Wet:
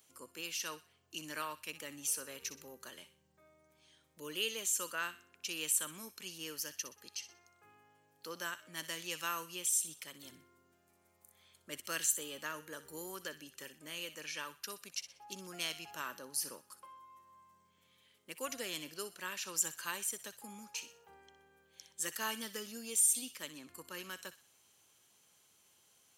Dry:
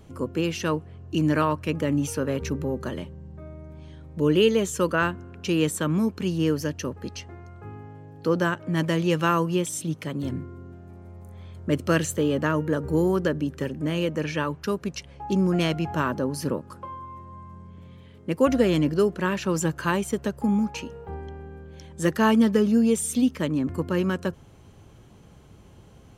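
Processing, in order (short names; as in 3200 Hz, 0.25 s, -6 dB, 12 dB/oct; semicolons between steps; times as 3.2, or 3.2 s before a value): differentiator; thin delay 62 ms, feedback 36%, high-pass 1600 Hz, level -11.5 dB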